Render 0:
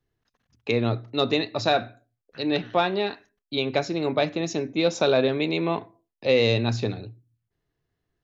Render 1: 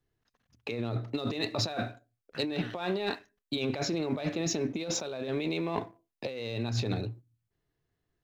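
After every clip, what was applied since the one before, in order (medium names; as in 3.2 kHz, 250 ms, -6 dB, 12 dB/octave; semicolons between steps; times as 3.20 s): compressor with a negative ratio -30 dBFS, ratio -1; waveshaping leveller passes 1; trim -6 dB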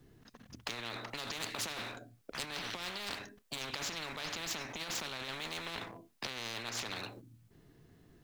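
peaking EQ 220 Hz +10.5 dB 1.6 oct; peak limiter -19 dBFS, peak gain reduction 6.5 dB; spectrum-flattening compressor 10:1; trim -1 dB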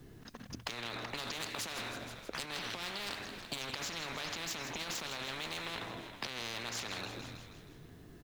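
frequency-shifting echo 159 ms, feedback 54%, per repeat -49 Hz, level -12 dB; compression 4:1, threshold -45 dBFS, peak gain reduction 10 dB; trim +7 dB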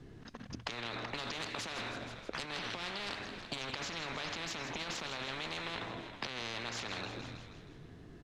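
distance through air 79 m; trim +1.5 dB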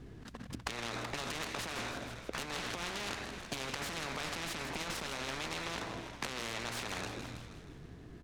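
tracing distortion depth 0.033 ms; hum 60 Hz, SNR 16 dB; delay time shaken by noise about 2.1 kHz, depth 0.035 ms; trim +1 dB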